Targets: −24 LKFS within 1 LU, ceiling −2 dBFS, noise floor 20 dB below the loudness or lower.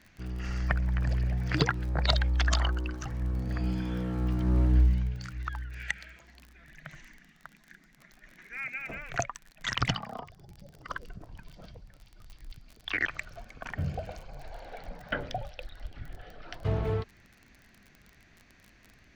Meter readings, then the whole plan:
crackle rate 34 per second; integrated loudness −31.5 LKFS; sample peak −7.0 dBFS; target loudness −24.0 LKFS
→ click removal
level +7.5 dB
brickwall limiter −2 dBFS

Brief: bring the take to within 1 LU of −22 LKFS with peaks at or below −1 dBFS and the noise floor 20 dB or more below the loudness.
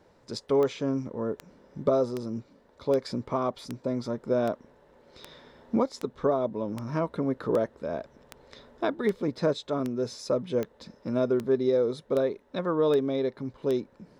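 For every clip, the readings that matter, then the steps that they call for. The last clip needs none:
number of clicks 18; integrated loudness −29.0 LKFS; sample peak −12.5 dBFS; target loudness −22.0 LKFS
→ click removal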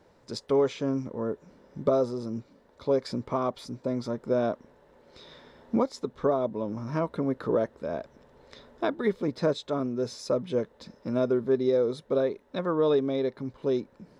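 number of clicks 0; integrated loudness −29.0 LKFS; sample peak −12.5 dBFS; target loudness −22.0 LKFS
→ level +7 dB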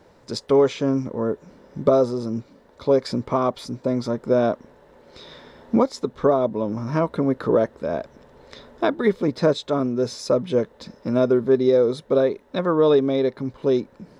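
integrated loudness −22.0 LKFS; sample peak −5.5 dBFS; background noise floor −54 dBFS

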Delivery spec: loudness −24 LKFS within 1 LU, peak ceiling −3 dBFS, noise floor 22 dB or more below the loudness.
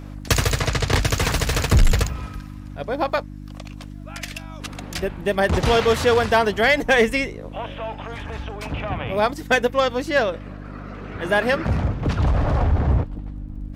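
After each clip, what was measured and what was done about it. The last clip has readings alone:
crackle rate 27 per second; mains hum 50 Hz; hum harmonics up to 300 Hz; level of the hum −33 dBFS; integrated loudness −21.0 LKFS; sample peak −8.0 dBFS; target loudness −24.0 LKFS
→ click removal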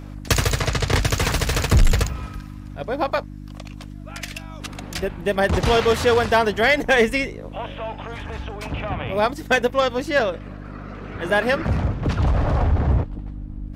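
crackle rate 0.073 per second; mains hum 50 Hz; hum harmonics up to 300 Hz; level of the hum −33 dBFS
→ hum removal 50 Hz, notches 6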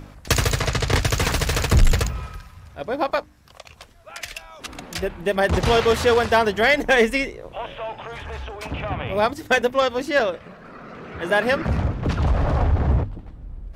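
mains hum none found; integrated loudness −21.5 LKFS; sample peak −6.0 dBFS; target loudness −24.0 LKFS
→ level −2.5 dB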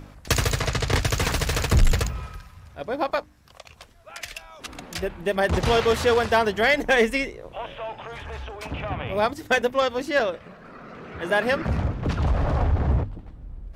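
integrated loudness −24.0 LKFS; sample peak −8.5 dBFS; background noise floor −50 dBFS

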